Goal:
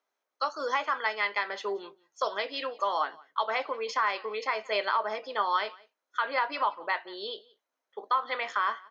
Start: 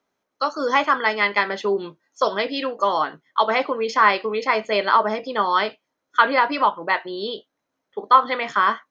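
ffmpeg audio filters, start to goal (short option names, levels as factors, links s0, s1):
-af "highpass=510,alimiter=limit=0.299:level=0:latency=1:release=216,aecho=1:1:177:0.0631,volume=0.501"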